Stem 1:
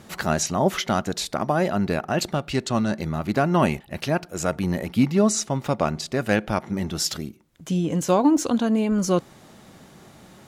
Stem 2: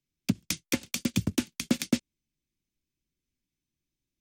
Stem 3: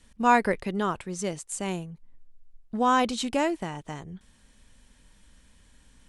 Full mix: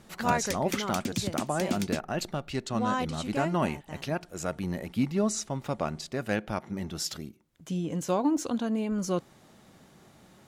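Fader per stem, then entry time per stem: −8.0, −5.0, −8.0 decibels; 0.00, 0.00, 0.00 seconds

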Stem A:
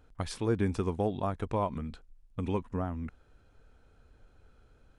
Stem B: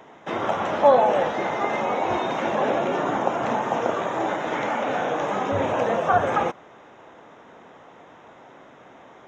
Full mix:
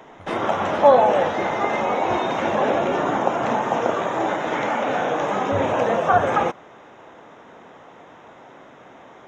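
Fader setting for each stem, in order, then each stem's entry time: −11.5, +2.5 decibels; 0.00, 0.00 seconds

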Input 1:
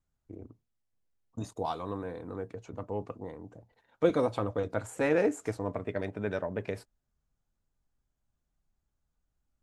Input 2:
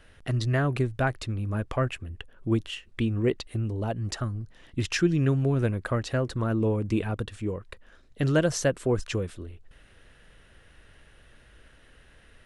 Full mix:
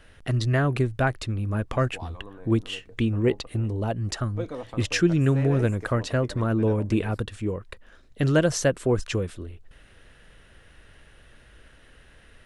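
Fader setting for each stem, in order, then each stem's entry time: −8.0, +2.5 decibels; 0.35, 0.00 seconds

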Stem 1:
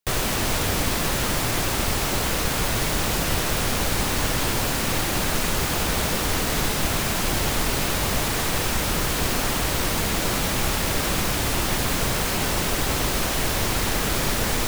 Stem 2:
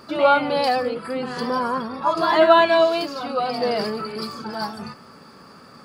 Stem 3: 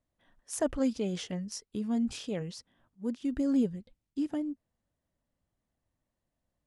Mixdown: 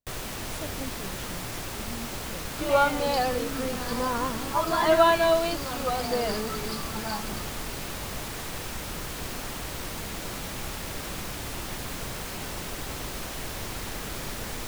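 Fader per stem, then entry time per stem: −11.5, −5.5, −10.5 decibels; 0.00, 2.50, 0.00 seconds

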